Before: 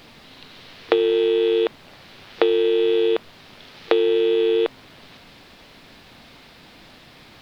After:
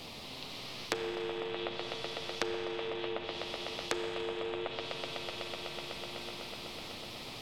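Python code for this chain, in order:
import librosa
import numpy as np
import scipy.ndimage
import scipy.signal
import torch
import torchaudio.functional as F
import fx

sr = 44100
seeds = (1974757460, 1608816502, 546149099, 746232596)

y = fx.peak_eq(x, sr, hz=1600.0, db=-14.5, octaves=0.68)
y = fx.echo_swell(y, sr, ms=125, loudest=5, wet_db=-12.5)
y = 10.0 ** (-9.5 / 20.0) * (np.abs((y / 10.0 ** (-9.5 / 20.0) + 3.0) % 4.0 - 2.0) - 1.0)
y = fx.chorus_voices(y, sr, voices=2, hz=0.4, base_ms=12, depth_ms=4.8, mix_pct=30)
y = fx.env_lowpass_down(y, sr, base_hz=1600.0, full_db=-19.0)
y = fx.rev_schroeder(y, sr, rt60_s=2.8, comb_ms=28, drr_db=10.0)
y = fx.spectral_comp(y, sr, ratio=2.0)
y = F.gain(torch.from_numpy(y), -3.0).numpy()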